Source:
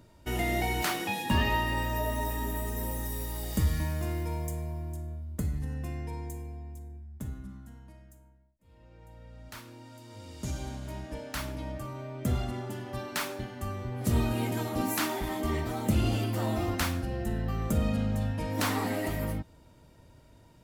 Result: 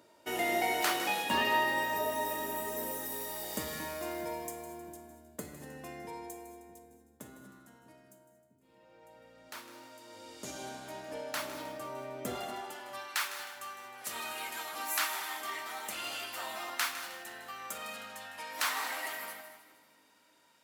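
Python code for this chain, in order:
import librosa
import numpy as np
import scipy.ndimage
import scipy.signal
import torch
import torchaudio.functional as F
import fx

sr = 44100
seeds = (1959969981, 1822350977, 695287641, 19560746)

p1 = fx.low_shelf(x, sr, hz=150.0, db=3.0)
p2 = p1 + fx.echo_split(p1, sr, split_hz=390.0, low_ms=650, high_ms=156, feedback_pct=52, wet_db=-13, dry=0)
p3 = fx.filter_sweep_highpass(p2, sr, from_hz=430.0, to_hz=1200.0, start_s=12.29, end_s=13.11, q=0.92)
y = fx.rev_gated(p3, sr, seeds[0], gate_ms=260, shape='rising', drr_db=11.5)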